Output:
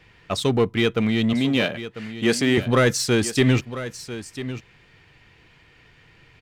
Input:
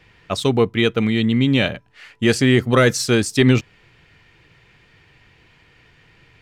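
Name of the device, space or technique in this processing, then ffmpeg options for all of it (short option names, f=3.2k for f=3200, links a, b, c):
parallel distortion: -filter_complex "[0:a]asplit=2[a][b];[b]asoftclip=type=hard:threshold=-20.5dB,volume=-4.5dB[c];[a][c]amix=inputs=2:normalize=0,asettb=1/sr,asplit=3[d][e][f];[d]atrim=end=1.334[g];[e]atrim=start=1.33:end=2.58,asetpts=PTS-STARTPTS,afade=t=in:d=0.004:c=qsin,afade=t=out:st=1.246:d=0.004:c=qsin,highpass=190[h];[f]atrim=start=2.576[i];[g][h]acrossfade=d=0.004:c1=hsin:c2=qsin[j];[j][i]acrossfade=d=0.004:c1=qsin:c2=hsin,aecho=1:1:996:0.224,volume=-5dB"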